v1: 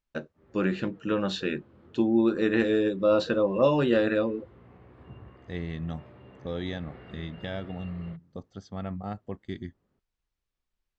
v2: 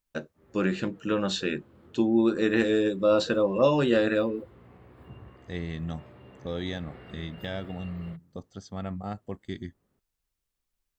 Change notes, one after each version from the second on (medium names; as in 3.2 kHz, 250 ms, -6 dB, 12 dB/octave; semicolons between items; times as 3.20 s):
master: remove distance through air 110 m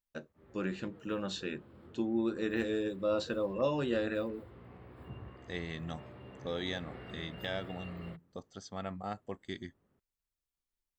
first voice -9.5 dB; second voice: add bass shelf 290 Hz -11 dB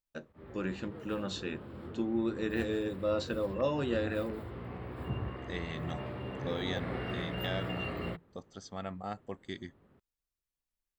background +10.5 dB